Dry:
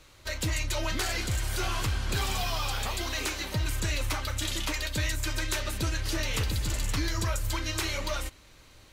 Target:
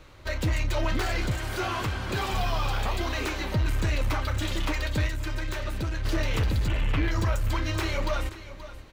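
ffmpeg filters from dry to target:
-filter_complex "[0:a]asettb=1/sr,asplit=3[a][b][c];[a]atrim=end=1.314[d];[b]atrim=start=1.31:end=2.33,asetpts=PTS-STARTPTS,afade=t=in:d=0.004:c=qsin,afade=t=out:st=1.016:d=0.004:c=qsin,highpass=f=170:p=1[e];[c]atrim=start=2.326[f];[d][e]acrossfade=d=0.004:c1=hsin:c2=qsin[g];[g][f]acrossfade=d=0.004:c1=qsin:c2=hsin,asettb=1/sr,asplit=3[h][i][j];[h]atrim=end=6.684[k];[i]atrim=start=6.68:end=7.11,asetpts=PTS-STARTPTS,afade=t=in:d=0.004:c=qsin,afade=t=out:st=0.426:d=0.004:c=qsin,highshelf=f=3.8k:t=q:w=3:g=-9[l];[j]atrim=start=7.106[m];[k][l]acrossfade=d=0.004:c1=hsin:c2=qsin[n];[n][m]acrossfade=d=0.004:c1=qsin:c2=hsin,aecho=1:1:528:0.158,asoftclip=type=tanh:threshold=-25dB,asettb=1/sr,asplit=3[o][p][q];[o]atrim=end=5.064[r];[p]atrim=start=5.06:end=6.05,asetpts=PTS-STARTPTS,afade=t=in:d=0.004:c=qsin,afade=t=out:st=0.986:d=0.004:c=qsin,acompressor=threshold=-33dB:ratio=6[s];[q]atrim=start=6.046[t];[r][s]acrossfade=d=0.004:c1=hsin:c2=qsin[u];[u][t]acrossfade=d=0.004:c1=qsin:c2=hsin,equalizer=f=10k:t=o:w=2.6:g=-14,volume=7dB"

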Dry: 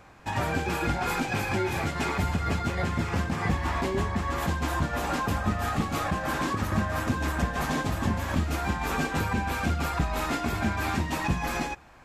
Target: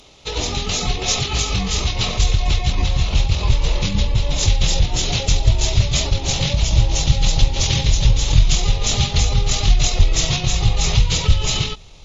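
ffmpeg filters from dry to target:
-af "aexciter=amount=9.4:drive=4.7:freq=4.5k,asetrate=22696,aresample=44100,atempo=1.94306,asubboost=boost=5:cutoff=140,volume=2.5dB"

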